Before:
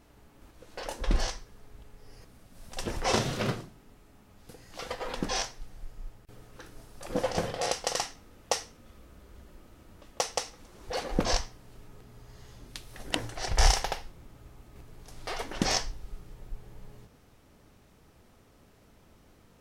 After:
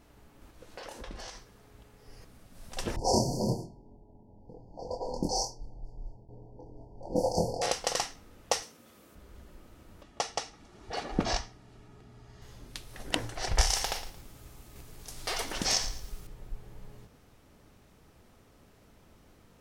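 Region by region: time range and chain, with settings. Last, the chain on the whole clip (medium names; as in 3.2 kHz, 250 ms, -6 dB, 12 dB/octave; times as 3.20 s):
0.75–2.08 s: high-pass 77 Hz 6 dB/octave + compression, threshold -39 dBFS
2.96–7.62 s: level-controlled noise filter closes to 960 Hz, open at -27.5 dBFS + brick-wall FIR band-stop 1–4.3 kHz + doubling 24 ms -3 dB
8.62–9.15 s: high-pass 170 Hz + treble shelf 6.9 kHz +8 dB
10.03–12.42 s: low-pass 9.3 kHz + treble shelf 7.3 kHz -6 dB + comb of notches 520 Hz
13.61–16.27 s: compression 3:1, threshold -30 dBFS + treble shelf 3.4 kHz +11.5 dB + bit-crushed delay 112 ms, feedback 35%, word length 8-bit, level -13 dB
whole clip: none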